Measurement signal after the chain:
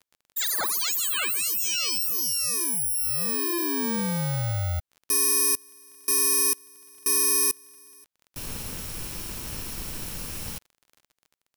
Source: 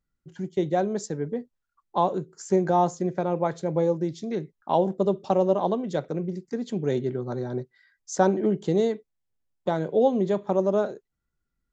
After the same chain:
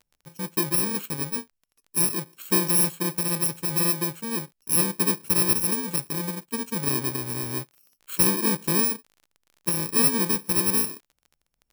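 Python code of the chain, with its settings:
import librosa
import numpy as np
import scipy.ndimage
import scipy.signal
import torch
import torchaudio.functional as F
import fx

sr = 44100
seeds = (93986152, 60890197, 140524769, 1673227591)

y = fx.bit_reversed(x, sr, seeds[0], block=64)
y = fx.dmg_crackle(y, sr, seeds[1], per_s=29.0, level_db=-41.0)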